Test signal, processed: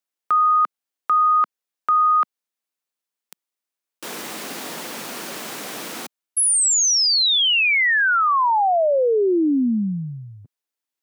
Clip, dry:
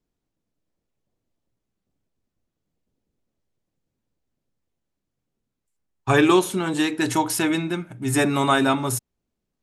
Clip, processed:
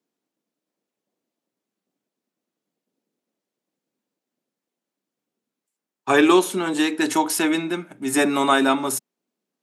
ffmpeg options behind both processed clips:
-af "highpass=f=210:w=0.5412,highpass=f=210:w=1.3066,volume=1.5dB"

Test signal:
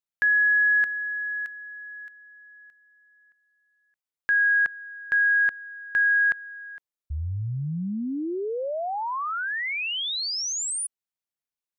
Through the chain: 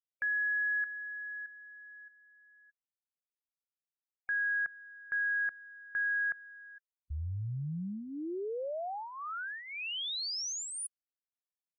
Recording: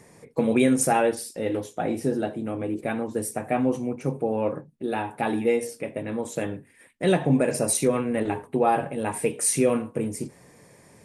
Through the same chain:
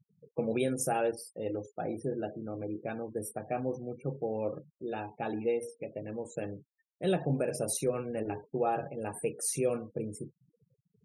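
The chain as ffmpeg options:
-af "afftfilt=real='re*gte(hypot(re,im),0.0158)':imag='im*gte(hypot(re,im),0.0158)':win_size=1024:overlap=0.75,equalizer=f=250:t=o:w=0.33:g=-8,equalizer=f=1k:t=o:w=0.33:g=-10,equalizer=f=2k:t=o:w=0.33:g=-12,equalizer=f=8k:t=o:w=0.33:g=-6,volume=-7dB"

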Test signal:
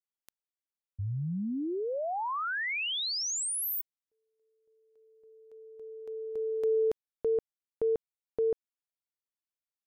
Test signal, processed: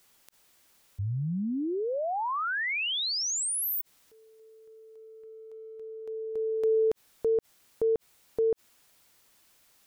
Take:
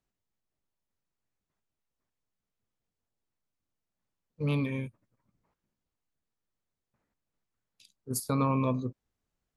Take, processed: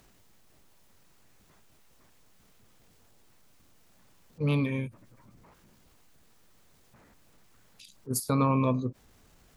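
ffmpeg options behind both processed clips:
-af "acompressor=mode=upward:threshold=-42dB:ratio=2.5:attack=0.32:release=33:knee=2.83:detection=peak,volume=2.5dB"

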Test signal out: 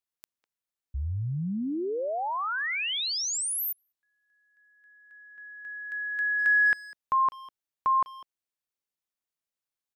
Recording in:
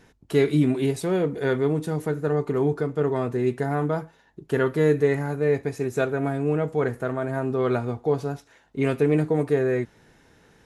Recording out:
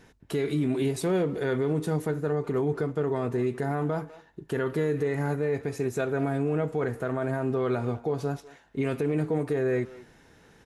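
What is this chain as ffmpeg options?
-filter_complex "[0:a]alimiter=limit=-18.5dB:level=0:latency=1:release=73,asplit=2[a][b];[b]adelay=200,highpass=300,lowpass=3.4k,asoftclip=type=hard:threshold=-27dB,volume=-16dB[c];[a][c]amix=inputs=2:normalize=0"

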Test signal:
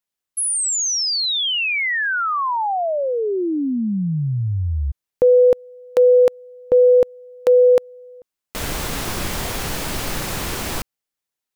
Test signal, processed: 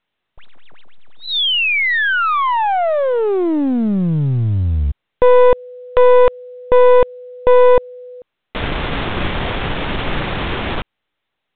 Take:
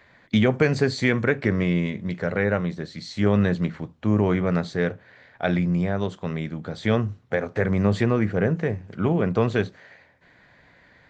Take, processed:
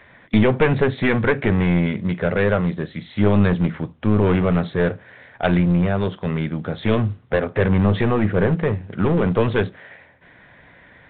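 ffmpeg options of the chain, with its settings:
-af "aeval=exprs='clip(val(0),-1,0.0708)':c=same,volume=6.5dB" -ar 8000 -c:a pcm_mulaw

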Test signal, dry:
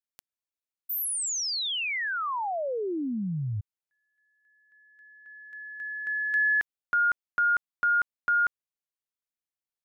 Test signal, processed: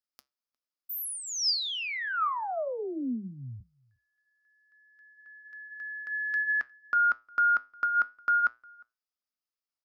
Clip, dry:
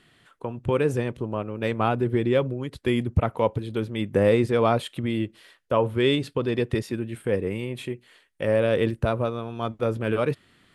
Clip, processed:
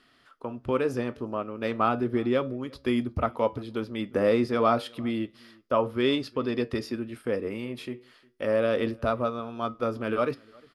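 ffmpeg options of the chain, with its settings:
-filter_complex "[0:a]flanger=delay=7.2:depth=2.3:regen=-80:speed=0.32:shape=sinusoidal,equalizer=f=100:t=o:w=0.33:g=-10,equalizer=f=160:t=o:w=0.33:g=-12,equalizer=f=250:t=o:w=0.33:g=6,equalizer=f=630:t=o:w=0.33:g=4,equalizer=f=1.25k:t=o:w=0.33:g=9,equalizer=f=5k:t=o:w=0.33:g=11,equalizer=f=8k:t=o:w=0.33:g=-7,asplit=2[a][b];[b]adelay=355.7,volume=-27dB,highshelf=f=4k:g=-8[c];[a][c]amix=inputs=2:normalize=0"

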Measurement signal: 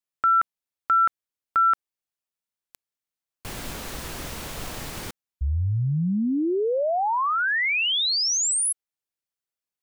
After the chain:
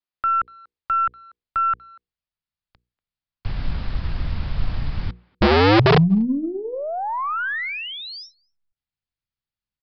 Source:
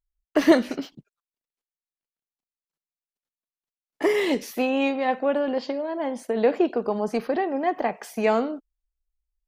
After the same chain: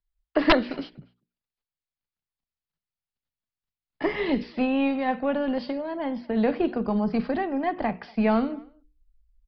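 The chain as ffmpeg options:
-filter_complex "[0:a]bandreject=f=60:t=h:w=6,bandreject=f=120:t=h:w=6,bandreject=f=180:t=h:w=6,bandreject=f=240:t=h:w=6,bandreject=f=300:t=h:w=6,bandreject=f=360:t=h:w=6,bandreject=f=420:t=h:w=6,bandreject=f=480:t=h:w=6,asubboost=boost=9:cutoff=140,acrossover=split=200|2000[a][b][c];[c]acompressor=threshold=-36dB:ratio=5:attack=0.29:release=70[d];[a][b][d]amix=inputs=3:normalize=0,aeval=exprs='(mod(2.99*val(0)+1,2)-1)/2.99':c=same,aeval=exprs='0.335*(cos(1*acos(clip(val(0)/0.335,-1,1)))-cos(1*PI/2))+0.00188*(cos(3*acos(clip(val(0)/0.335,-1,1)))-cos(3*PI/2))+0.00596*(cos(6*acos(clip(val(0)/0.335,-1,1)))-cos(6*PI/2))':c=same,asplit=2[e][f];[f]adelay=240,highpass=300,lowpass=3.4k,asoftclip=type=hard:threshold=-18dB,volume=-25dB[g];[e][g]amix=inputs=2:normalize=0,aresample=11025,aresample=44100"

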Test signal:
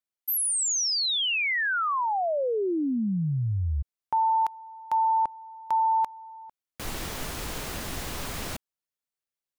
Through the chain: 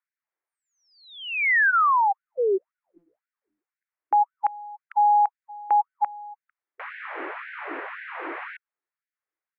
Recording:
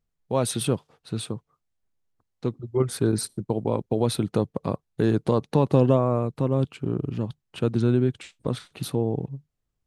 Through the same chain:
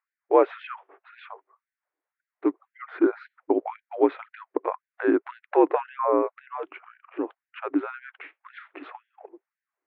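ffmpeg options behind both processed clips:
-af "asubboost=boost=9:cutoff=200,highpass=f=210:t=q:w=0.5412,highpass=f=210:t=q:w=1.307,lowpass=f=2.2k:t=q:w=0.5176,lowpass=f=2.2k:t=q:w=0.7071,lowpass=f=2.2k:t=q:w=1.932,afreqshift=-62,afftfilt=real='re*gte(b*sr/1024,270*pow(1500/270,0.5+0.5*sin(2*PI*1.9*pts/sr)))':imag='im*gte(b*sr/1024,270*pow(1500/270,0.5+0.5*sin(2*PI*1.9*pts/sr)))':win_size=1024:overlap=0.75,volume=8.5dB"

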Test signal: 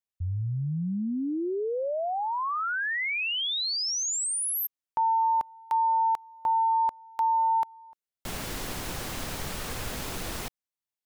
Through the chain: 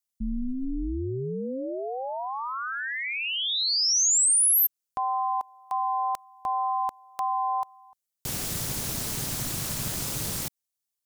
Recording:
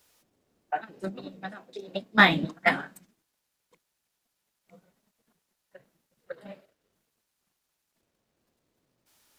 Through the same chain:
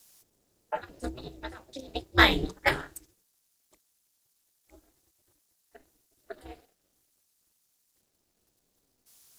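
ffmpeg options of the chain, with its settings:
-af "bass=f=250:g=4,treble=f=4k:g=12,aeval=exprs='val(0)*sin(2*PI*130*n/s)':c=same"

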